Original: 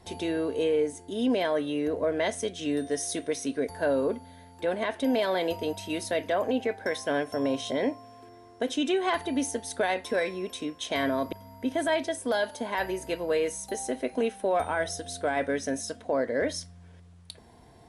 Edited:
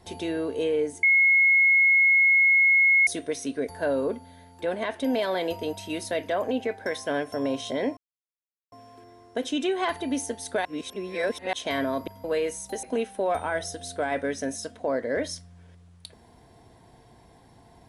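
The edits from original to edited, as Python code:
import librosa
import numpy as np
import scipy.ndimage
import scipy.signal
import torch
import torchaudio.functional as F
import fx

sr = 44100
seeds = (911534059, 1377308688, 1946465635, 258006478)

y = fx.edit(x, sr, fx.bleep(start_s=1.03, length_s=2.04, hz=2170.0, db=-15.5),
    fx.insert_silence(at_s=7.97, length_s=0.75),
    fx.reverse_span(start_s=9.9, length_s=0.88),
    fx.cut(start_s=11.49, length_s=1.74),
    fx.cut(start_s=13.82, length_s=0.26), tone=tone)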